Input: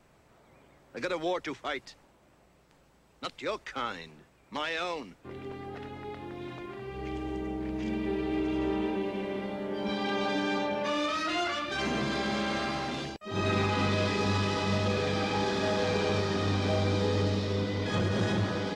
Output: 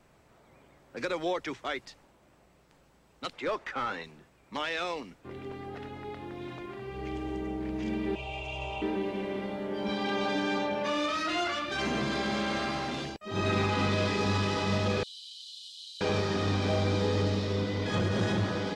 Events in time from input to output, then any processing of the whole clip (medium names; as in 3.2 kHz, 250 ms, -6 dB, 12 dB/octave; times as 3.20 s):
3.33–4.04 s: overdrive pedal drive 17 dB, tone 1.1 kHz, clips at -20.5 dBFS
8.15–8.82 s: FFT filter 140 Hz 0 dB, 260 Hz -30 dB, 620 Hz +2 dB, 880 Hz +2 dB, 1.8 kHz -19 dB, 2.6 kHz +11 dB, 4.2 kHz -4 dB, 7 kHz +5 dB, 12 kHz -8 dB
15.03–16.01 s: rippled Chebyshev high-pass 2.9 kHz, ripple 9 dB